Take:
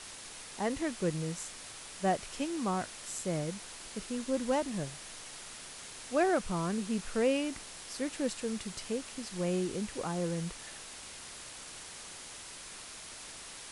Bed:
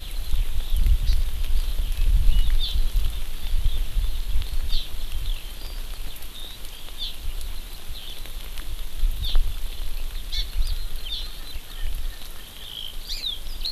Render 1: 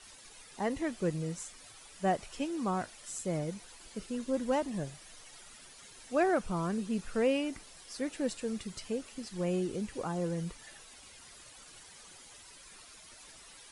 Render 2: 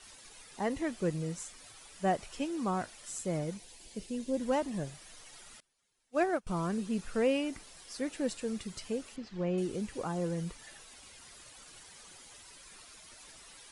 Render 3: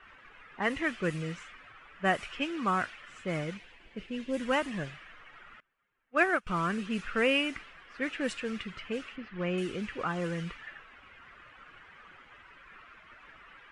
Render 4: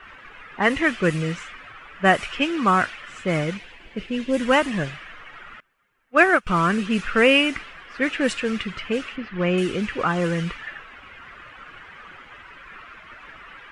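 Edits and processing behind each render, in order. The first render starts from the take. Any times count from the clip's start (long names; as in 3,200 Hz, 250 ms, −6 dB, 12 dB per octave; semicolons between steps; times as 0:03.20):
broadband denoise 11 dB, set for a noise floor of −47 dBFS
0:03.57–0:04.41: parametric band 1,300 Hz −14 dB 0.71 octaves; 0:05.60–0:06.47: expander for the loud parts 2.5 to 1, over −42 dBFS; 0:09.16–0:09.58: high-frequency loss of the air 180 metres
low-pass that shuts in the quiet parts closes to 1,300 Hz, open at −26.5 dBFS; flat-topped bell 1,900 Hz +12 dB
level +10.5 dB; brickwall limiter −3 dBFS, peak gain reduction 1 dB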